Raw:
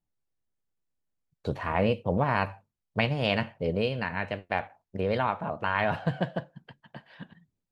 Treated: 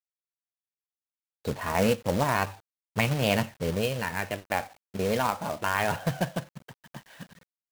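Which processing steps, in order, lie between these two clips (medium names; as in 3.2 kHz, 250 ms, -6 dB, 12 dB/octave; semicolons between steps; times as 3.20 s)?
phaser 0.3 Hz, delay 4.8 ms, feedback 26%; companded quantiser 4-bit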